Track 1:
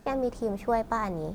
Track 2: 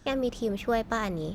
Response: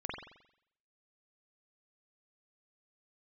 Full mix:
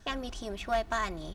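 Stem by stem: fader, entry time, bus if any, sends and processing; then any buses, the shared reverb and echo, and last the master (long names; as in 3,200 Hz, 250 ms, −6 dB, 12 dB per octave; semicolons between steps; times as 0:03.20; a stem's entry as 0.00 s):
−9.0 dB, 0.00 s, no send, no processing
−0.5 dB, 2.9 ms, no send, Butterworth low-pass 11,000 Hz 36 dB per octave; parametric band 300 Hz −14 dB 2 octaves; comb filter 2.7 ms, depth 51%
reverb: not used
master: gain into a clipping stage and back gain 22 dB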